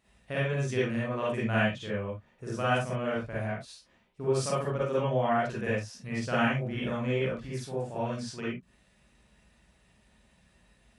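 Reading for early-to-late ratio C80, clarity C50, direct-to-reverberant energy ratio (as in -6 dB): 6.5 dB, -2.0 dB, -8.0 dB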